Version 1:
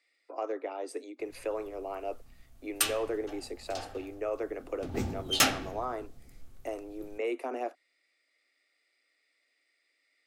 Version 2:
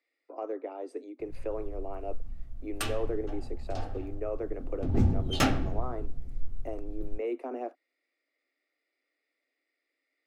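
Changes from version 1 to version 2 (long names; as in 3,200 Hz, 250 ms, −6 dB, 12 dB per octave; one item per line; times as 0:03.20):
speech −4.5 dB
master: add spectral tilt −3.5 dB per octave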